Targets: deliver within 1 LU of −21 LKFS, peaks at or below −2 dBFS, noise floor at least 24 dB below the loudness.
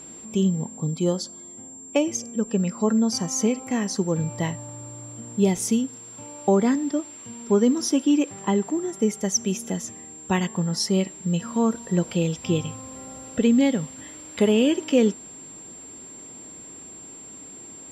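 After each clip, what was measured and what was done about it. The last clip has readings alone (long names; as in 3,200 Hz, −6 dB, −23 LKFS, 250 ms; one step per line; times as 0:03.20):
interfering tone 7,400 Hz; level of the tone −40 dBFS; integrated loudness −24.0 LKFS; sample peak −7.5 dBFS; target loudness −21.0 LKFS
→ notch filter 7,400 Hz, Q 30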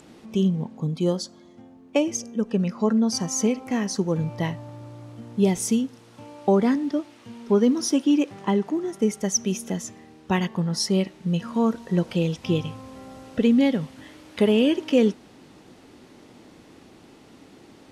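interfering tone none found; integrated loudness −24.0 LKFS; sample peak −8.0 dBFS; target loudness −21.0 LKFS
→ level +3 dB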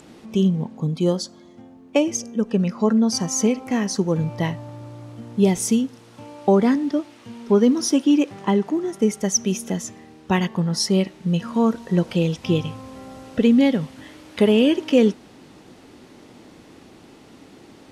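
integrated loudness −21.0 LKFS; sample peak −5.0 dBFS; background noise floor −48 dBFS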